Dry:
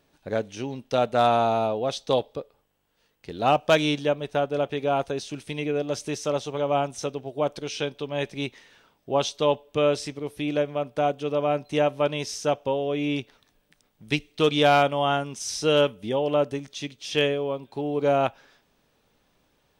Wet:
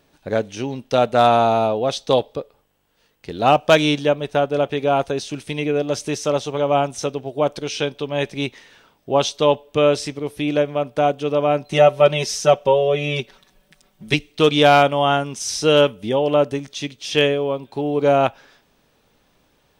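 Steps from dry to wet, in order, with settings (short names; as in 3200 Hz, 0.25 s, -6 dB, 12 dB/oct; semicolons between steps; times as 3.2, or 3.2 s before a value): 11.71–14.14 comb 5.3 ms, depth 88%; gain +6 dB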